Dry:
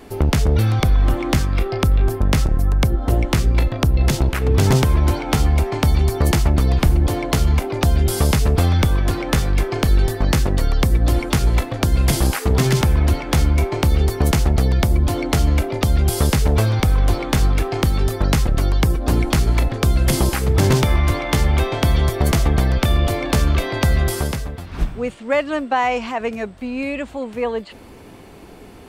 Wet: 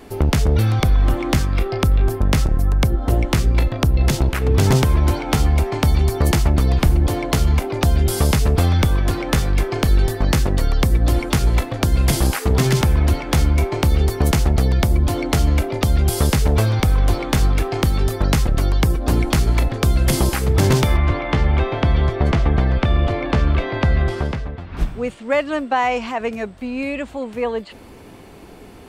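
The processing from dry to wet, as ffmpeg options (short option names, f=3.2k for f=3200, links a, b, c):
-filter_complex "[0:a]asettb=1/sr,asplit=3[a][b][c];[a]atrim=end=20.974[d];[b]atrim=start=20.97:end=24.77,asetpts=PTS-STARTPTS,afade=t=in:d=0.004:c=qsin,afade=t=out:st=3.796:d=0.004:c=qsin,lowpass=2.9k[e];[c]atrim=start=24.766[f];[d][e]acrossfade=d=0.004:c1=hsin:c2=qsin[g];[g][f]acrossfade=d=0.004:c1=qsin:c2=hsin"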